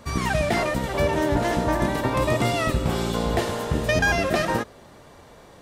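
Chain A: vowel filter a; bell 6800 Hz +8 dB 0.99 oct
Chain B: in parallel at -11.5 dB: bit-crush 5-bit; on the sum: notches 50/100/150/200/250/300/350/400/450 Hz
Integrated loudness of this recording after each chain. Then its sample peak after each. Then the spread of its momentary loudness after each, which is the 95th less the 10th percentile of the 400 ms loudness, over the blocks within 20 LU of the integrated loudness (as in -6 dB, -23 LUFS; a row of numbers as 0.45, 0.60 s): -33.5, -21.5 LUFS; -17.0, -8.5 dBFS; 8, 5 LU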